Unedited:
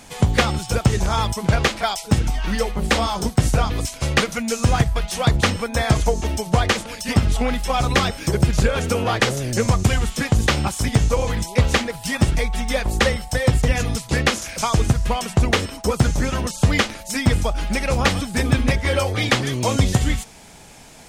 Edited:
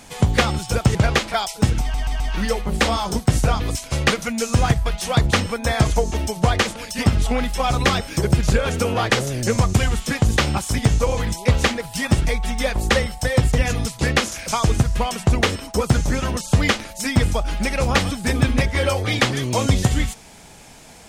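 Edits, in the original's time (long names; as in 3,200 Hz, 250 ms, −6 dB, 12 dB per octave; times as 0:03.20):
0:00.95–0:01.44: remove
0:02.30: stutter 0.13 s, 4 plays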